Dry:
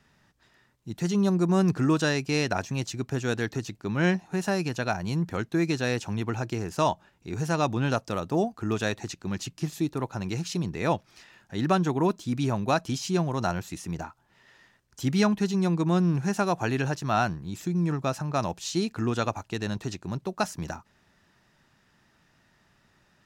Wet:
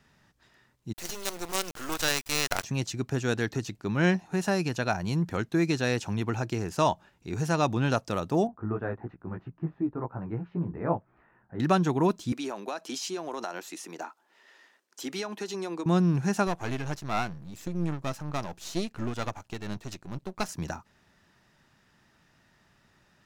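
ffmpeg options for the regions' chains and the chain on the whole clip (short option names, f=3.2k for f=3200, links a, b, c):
-filter_complex "[0:a]asettb=1/sr,asplit=3[a][b][c];[a]atrim=end=0.934[d];[b]atrim=start=0.93:end=2.64,asetpts=PTS-STARTPTS,afade=t=in:d=0.004:c=qsin,afade=t=out:st=1.706:d=0.004:c=qsin,highpass=530,highshelf=f=3.9k:g=9.5,acrusher=bits=4:dc=4:mix=0:aa=0.000001[e];[c]atrim=start=2.636[f];[d][e]acrossfade=d=0.004:c1=hsin:c2=qsin[g];[g][f]acrossfade=d=0.004:c1=qsin:c2=hsin,asettb=1/sr,asplit=3[h][i][j];[h]atrim=end=8.474[k];[i]atrim=start=8.47:end=11.6,asetpts=PTS-STARTPTS,afade=t=in:d=0.004:c=qsin,afade=t=out:st=3.126:d=0.004:c=qsin,lowpass=f=1.5k:w=0.5412,lowpass=f=1.5k:w=1.3066,flanger=delay=15.5:depth=2.7:speed=3[l];[j]atrim=start=11.596[m];[k][l]acrossfade=d=0.004:c1=hsin:c2=qsin[n];[n][m]acrossfade=d=0.004:c1=qsin:c2=hsin,asettb=1/sr,asplit=3[o][p][q];[o]atrim=end=12.324[r];[p]atrim=start=12.32:end=15.86,asetpts=PTS-STARTPTS,afade=t=in:d=0.004:c=qsin,afade=t=out:st=3.536:d=0.004:c=qsin,highpass=f=300:w=0.5412,highpass=f=300:w=1.3066,acompressor=threshold=-29dB:ratio=10:attack=3.2:release=140:knee=1:detection=peak[s];[q]atrim=start=15.856[t];[r][s]acrossfade=d=0.004:c1=hsin:c2=qsin[u];[u][t]acrossfade=d=0.004:c1=qsin:c2=hsin,asettb=1/sr,asplit=3[v][w][x];[v]atrim=end=16.474[y];[w]atrim=start=16.47:end=20.49,asetpts=PTS-STARTPTS,afade=t=in:d=0.004:c=qsin,afade=t=out:st=4.016:d=0.004:c=qsin,aeval=exprs='if(lt(val(0),0),0.251*val(0),val(0))':c=same,tremolo=f=4.3:d=0.34[z];[x]atrim=start=20.486[aa];[y][z]acrossfade=d=0.004:c1=hsin:c2=qsin[ab];[ab][aa]acrossfade=d=0.004:c1=qsin:c2=hsin"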